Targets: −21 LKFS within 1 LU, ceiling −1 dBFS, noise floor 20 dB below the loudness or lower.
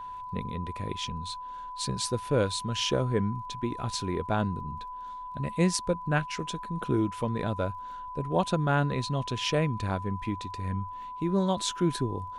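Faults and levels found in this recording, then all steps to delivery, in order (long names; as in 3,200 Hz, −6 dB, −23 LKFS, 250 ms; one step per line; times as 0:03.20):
crackle rate 23 per second; interfering tone 1,000 Hz; level of the tone −37 dBFS; integrated loudness −30.5 LKFS; sample peak −11.0 dBFS; target loudness −21.0 LKFS
→ click removal
notch filter 1,000 Hz, Q 30
level +9.5 dB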